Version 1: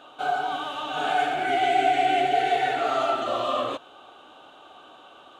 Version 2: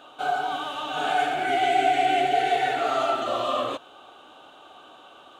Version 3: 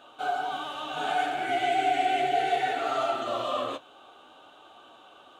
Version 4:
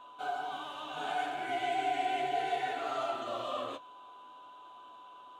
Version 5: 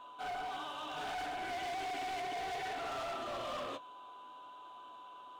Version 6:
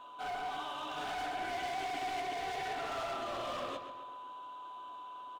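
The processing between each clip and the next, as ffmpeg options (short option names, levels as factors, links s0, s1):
-af "highshelf=f=7500:g=5"
-af "flanger=delay=8.5:depth=4.4:regen=-41:speed=0.62:shape=sinusoidal"
-af "aeval=exprs='val(0)+0.00708*sin(2*PI*1000*n/s)':c=same,volume=0.447"
-af "asoftclip=type=hard:threshold=0.0133"
-filter_complex "[0:a]asplit=2[s0][s1];[s1]adelay=133,lowpass=f=4400:p=1,volume=0.355,asplit=2[s2][s3];[s3]adelay=133,lowpass=f=4400:p=1,volume=0.54,asplit=2[s4][s5];[s5]adelay=133,lowpass=f=4400:p=1,volume=0.54,asplit=2[s6][s7];[s7]adelay=133,lowpass=f=4400:p=1,volume=0.54,asplit=2[s8][s9];[s9]adelay=133,lowpass=f=4400:p=1,volume=0.54,asplit=2[s10][s11];[s11]adelay=133,lowpass=f=4400:p=1,volume=0.54[s12];[s0][s2][s4][s6][s8][s10][s12]amix=inputs=7:normalize=0,volume=1.12"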